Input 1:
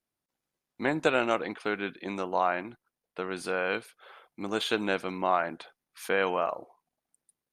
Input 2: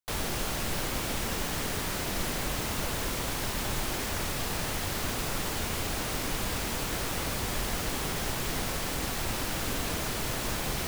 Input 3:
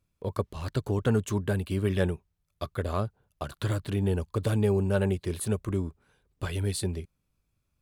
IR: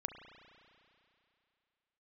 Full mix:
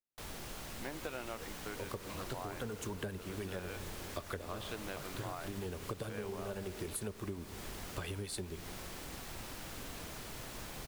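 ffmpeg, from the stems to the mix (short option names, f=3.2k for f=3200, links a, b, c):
-filter_complex "[0:a]volume=-14dB,asplit=2[a][b];[1:a]adelay=100,volume=-14dB[c];[2:a]lowshelf=f=190:g=-8.5,acrossover=split=490[d][e];[d]aeval=exprs='val(0)*(1-0.5/2+0.5/2*cos(2*PI*9.9*n/s))':c=same[f];[e]aeval=exprs='val(0)*(1-0.5/2-0.5/2*cos(2*PI*9.9*n/s))':c=same[g];[f][g]amix=inputs=2:normalize=0,adelay=1550,volume=1.5dB,asplit=2[h][i];[i]volume=-8dB[j];[b]apad=whole_len=412827[k];[h][k]sidechaincompress=threshold=-58dB:ratio=8:attack=16:release=318[l];[3:a]atrim=start_sample=2205[m];[j][m]afir=irnorm=-1:irlink=0[n];[a][c][l][n]amix=inputs=4:normalize=0,acompressor=threshold=-37dB:ratio=10"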